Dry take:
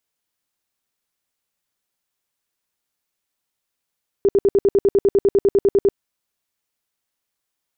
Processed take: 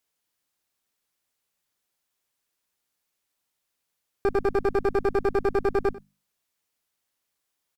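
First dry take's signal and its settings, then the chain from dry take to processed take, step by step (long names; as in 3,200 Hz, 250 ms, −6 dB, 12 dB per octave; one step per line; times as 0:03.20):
tone bursts 398 Hz, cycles 15, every 0.10 s, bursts 17, −10.5 dBFS
mains-hum notches 50/100/150/200/250 Hz
asymmetric clip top −31.5 dBFS, bottom −14.5 dBFS
single-tap delay 94 ms −19 dB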